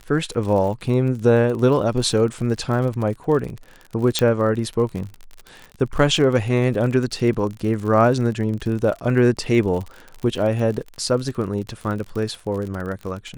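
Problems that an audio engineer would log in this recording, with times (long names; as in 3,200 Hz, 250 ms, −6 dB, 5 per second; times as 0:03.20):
surface crackle 45 per second −28 dBFS
0:04.19: click −4 dBFS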